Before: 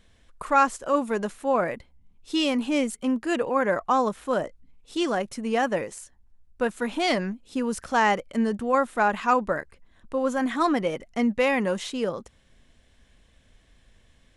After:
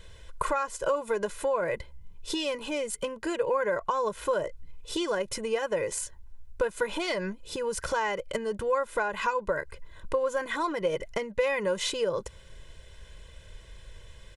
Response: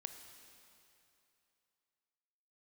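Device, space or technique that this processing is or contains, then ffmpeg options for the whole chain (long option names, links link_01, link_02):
serial compression, leveller first: -af "acompressor=threshold=-28dB:ratio=2,acompressor=threshold=-34dB:ratio=6,aecho=1:1:2:0.87,volume=6.5dB"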